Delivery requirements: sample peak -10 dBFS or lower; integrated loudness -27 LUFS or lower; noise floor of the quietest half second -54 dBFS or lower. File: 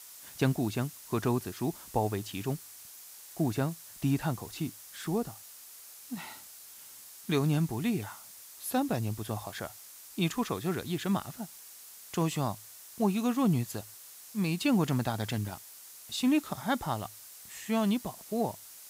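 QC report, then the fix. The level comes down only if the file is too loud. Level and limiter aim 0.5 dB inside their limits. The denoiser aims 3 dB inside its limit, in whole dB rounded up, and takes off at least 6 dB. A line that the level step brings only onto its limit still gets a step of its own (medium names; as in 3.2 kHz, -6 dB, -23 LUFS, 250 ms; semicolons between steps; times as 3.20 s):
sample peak -14.5 dBFS: pass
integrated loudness -32.5 LUFS: pass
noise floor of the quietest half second -50 dBFS: fail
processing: noise reduction 7 dB, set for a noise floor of -50 dBFS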